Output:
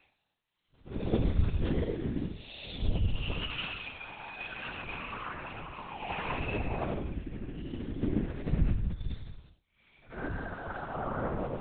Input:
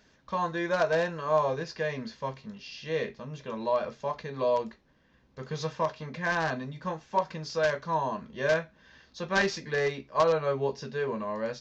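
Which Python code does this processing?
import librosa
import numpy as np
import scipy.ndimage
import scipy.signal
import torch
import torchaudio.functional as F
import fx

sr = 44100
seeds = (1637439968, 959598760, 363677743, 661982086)

y = fx.partial_stretch(x, sr, pct=125)
y = fx.dereverb_blind(y, sr, rt60_s=1.1)
y = fx.dynamic_eq(y, sr, hz=260.0, q=2.1, threshold_db=-52.0, ratio=4.0, max_db=4)
y = fx.over_compress(y, sr, threshold_db=-40.0, ratio=-1.0)
y = fx.quant_dither(y, sr, seeds[0], bits=8, dither='none')
y = fx.paulstretch(y, sr, seeds[1], factor=11.0, window_s=0.05, from_s=5.92)
y = fx.lpc_vocoder(y, sr, seeds[2], excitation='whisper', order=8)
y = fx.band_widen(y, sr, depth_pct=100)
y = y * librosa.db_to_amplitude(3.5)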